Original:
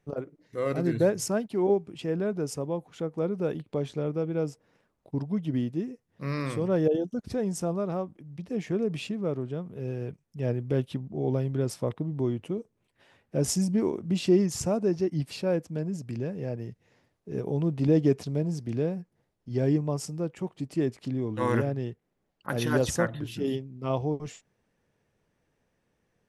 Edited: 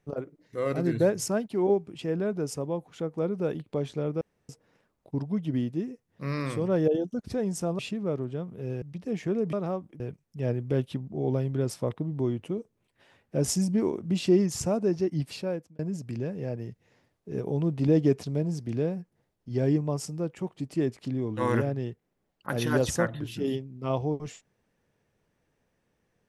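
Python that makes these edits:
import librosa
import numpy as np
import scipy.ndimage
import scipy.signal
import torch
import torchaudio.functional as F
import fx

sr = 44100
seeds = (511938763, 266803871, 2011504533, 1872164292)

y = fx.edit(x, sr, fx.room_tone_fill(start_s=4.21, length_s=0.28),
    fx.swap(start_s=7.79, length_s=0.47, other_s=8.97, other_length_s=1.03),
    fx.fade_out_span(start_s=15.31, length_s=0.48), tone=tone)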